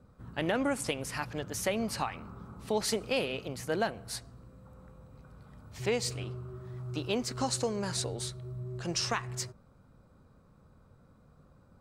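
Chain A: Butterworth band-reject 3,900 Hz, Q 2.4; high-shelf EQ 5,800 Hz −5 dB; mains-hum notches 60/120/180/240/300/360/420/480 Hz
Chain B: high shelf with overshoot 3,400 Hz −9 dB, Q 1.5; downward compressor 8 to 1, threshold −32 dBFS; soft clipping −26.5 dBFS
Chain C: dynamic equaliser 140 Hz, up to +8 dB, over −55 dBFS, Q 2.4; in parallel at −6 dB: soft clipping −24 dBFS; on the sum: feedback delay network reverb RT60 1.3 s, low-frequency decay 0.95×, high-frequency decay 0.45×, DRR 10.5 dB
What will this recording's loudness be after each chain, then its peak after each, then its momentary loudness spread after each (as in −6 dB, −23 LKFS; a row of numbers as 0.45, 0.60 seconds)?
−35.0, −40.0, −29.5 LKFS; −17.5, −26.5, −14.0 dBFS; 19, 16, 11 LU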